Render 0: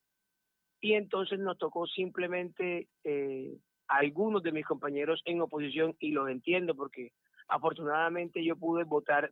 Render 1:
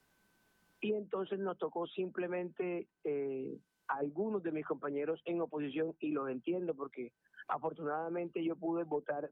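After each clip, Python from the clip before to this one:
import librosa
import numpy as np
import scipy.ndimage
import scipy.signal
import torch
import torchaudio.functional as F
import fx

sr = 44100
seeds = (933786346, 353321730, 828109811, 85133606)

y = fx.env_lowpass_down(x, sr, base_hz=530.0, full_db=-24.0)
y = fx.high_shelf(y, sr, hz=2400.0, db=-10.5)
y = fx.band_squash(y, sr, depth_pct=70)
y = F.gain(torch.from_numpy(y), -4.5).numpy()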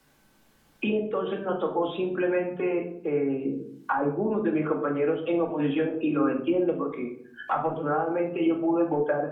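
y = fx.room_shoebox(x, sr, seeds[0], volume_m3=840.0, walls='furnished', distance_m=2.3)
y = F.gain(torch.from_numpy(y), 8.5).numpy()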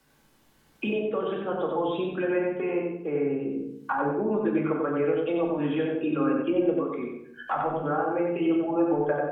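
y = fx.echo_feedback(x, sr, ms=92, feedback_pct=30, wet_db=-3.5)
y = F.gain(torch.from_numpy(y), -2.0).numpy()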